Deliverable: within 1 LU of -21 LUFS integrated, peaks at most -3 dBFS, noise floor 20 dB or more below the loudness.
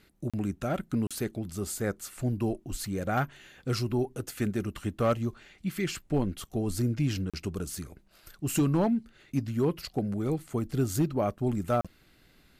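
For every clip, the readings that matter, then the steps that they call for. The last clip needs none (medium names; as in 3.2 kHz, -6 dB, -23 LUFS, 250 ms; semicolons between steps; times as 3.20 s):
clipped samples 0.2%; clipping level -18.5 dBFS; dropouts 4; longest dropout 36 ms; loudness -31.0 LUFS; peak level -18.5 dBFS; loudness target -21.0 LUFS
-> clip repair -18.5 dBFS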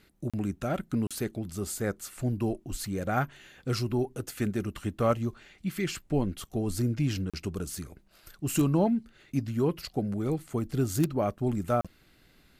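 clipped samples 0.0%; dropouts 4; longest dropout 36 ms
-> interpolate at 0.30/1.07/7.30/11.81 s, 36 ms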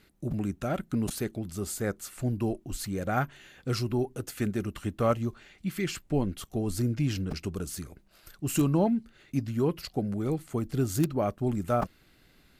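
dropouts 0; loudness -31.0 LUFS; peak level -9.5 dBFS; loudness target -21.0 LUFS
-> trim +10 dB; peak limiter -3 dBFS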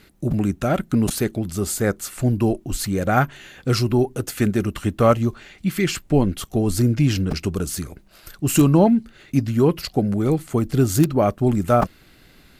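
loudness -21.0 LUFS; peak level -3.0 dBFS; noise floor -52 dBFS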